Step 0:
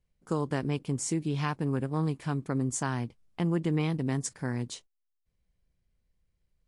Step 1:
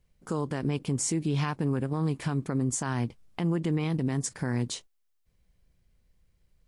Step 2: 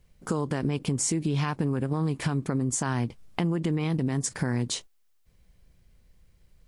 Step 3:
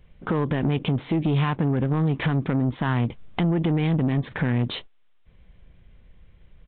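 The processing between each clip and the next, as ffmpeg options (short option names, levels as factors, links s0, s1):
-af "alimiter=level_in=1.58:limit=0.0631:level=0:latency=1:release=122,volume=0.631,volume=2.51"
-af "acompressor=threshold=0.0282:ratio=6,volume=2.37"
-af "asoftclip=type=tanh:threshold=0.0596,aresample=8000,aresample=44100,volume=2.51"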